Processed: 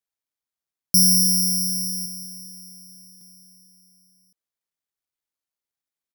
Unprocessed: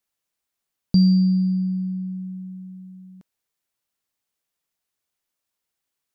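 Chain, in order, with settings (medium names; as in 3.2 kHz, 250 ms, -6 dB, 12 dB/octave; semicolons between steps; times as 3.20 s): 1.14–1.78 s: comb of notches 330 Hz; delay 1115 ms -17.5 dB; careless resampling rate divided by 8×, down filtered, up zero stuff; trim -9.5 dB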